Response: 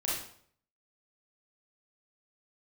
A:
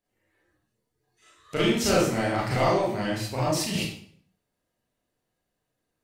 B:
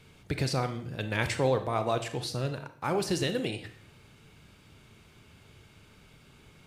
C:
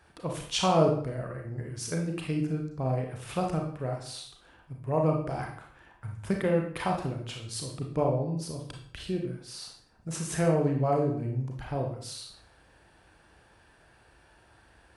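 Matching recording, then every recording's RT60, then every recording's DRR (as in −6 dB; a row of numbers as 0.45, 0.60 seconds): A; 0.60, 0.60, 0.60 seconds; −7.0, 8.0, 1.0 decibels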